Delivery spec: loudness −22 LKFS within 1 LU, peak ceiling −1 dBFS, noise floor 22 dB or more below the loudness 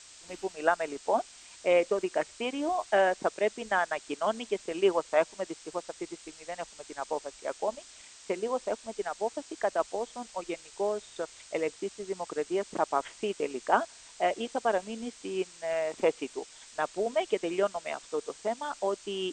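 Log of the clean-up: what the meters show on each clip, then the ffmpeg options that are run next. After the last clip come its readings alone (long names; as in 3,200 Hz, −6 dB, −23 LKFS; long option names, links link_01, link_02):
background noise floor −52 dBFS; target noise floor −54 dBFS; integrated loudness −32.0 LKFS; sample peak −9.0 dBFS; target loudness −22.0 LKFS
→ -af "afftdn=noise_reduction=6:noise_floor=-52"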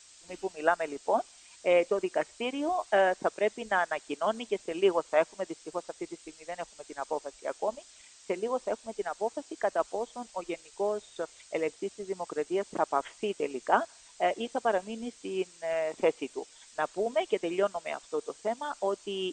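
background noise floor −56 dBFS; integrated loudness −32.0 LKFS; sample peak −9.5 dBFS; target loudness −22.0 LKFS
→ -af "volume=10dB,alimiter=limit=-1dB:level=0:latency=1"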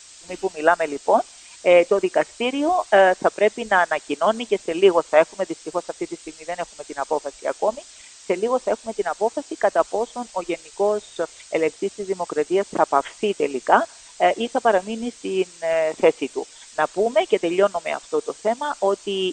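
integrated loudness −22.0 LKFS; sample peak −1.0 dBFS; background noise floor −46 dBFS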